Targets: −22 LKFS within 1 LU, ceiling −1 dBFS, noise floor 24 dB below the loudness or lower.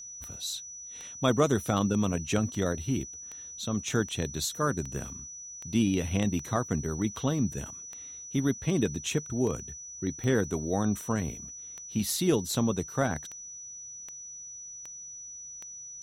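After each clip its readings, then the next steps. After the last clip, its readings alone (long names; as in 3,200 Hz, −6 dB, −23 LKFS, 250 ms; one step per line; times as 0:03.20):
number of clicks 21; interfering tone 5,900 Hz; level of the tone −41 dBFS; integrated loudness −31.0 LKFS; sample peak −11.0 dBFS; target loudness −22.0 LKFS
→ click removal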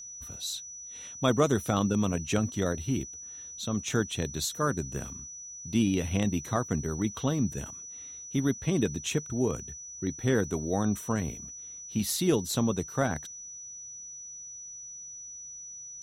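number of clicks 0; interfering tone 5,900 Hz; level of the tone −41 dBFS
→ notch filter 5,900 Hz, Q 30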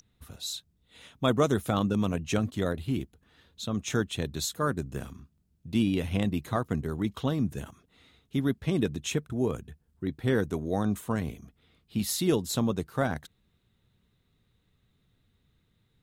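interfering tone none found; integrated loudness −30.0 LKFS; sample peak −11.0 dBFS; target loudness −22.0 LKFS
→ level +8 dB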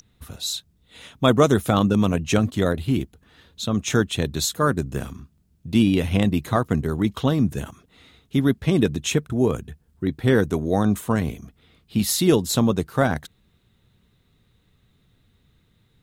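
integrated loudness −22.0 LKFS; sample peak −3.0 dBFS; background noise floor −63 dBFS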